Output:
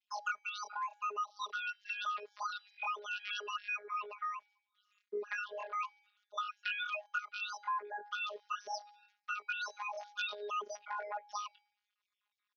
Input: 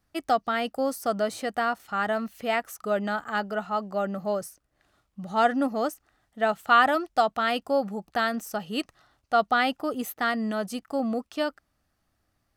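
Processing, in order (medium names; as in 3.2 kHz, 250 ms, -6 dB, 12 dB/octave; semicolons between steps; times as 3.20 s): formants replaced by sine waves; de-hum 403.8 Hz, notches 32; compression 8:1, threshold -34 dBFS, peak gain reduction 21 dB; pitch shift +11.5 st; robot voice 207 Hz; trim +1 dB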